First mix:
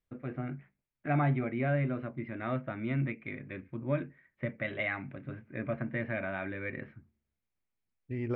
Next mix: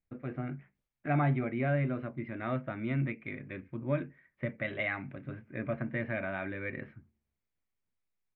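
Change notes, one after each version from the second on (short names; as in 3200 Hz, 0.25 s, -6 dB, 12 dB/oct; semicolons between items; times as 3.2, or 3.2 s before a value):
second voice: entry +0.75 s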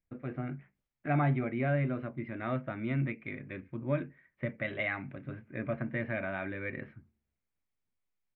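none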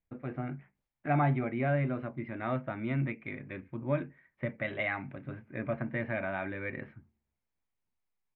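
master: add bell 860 Hz +5.5 dB 0.58 oct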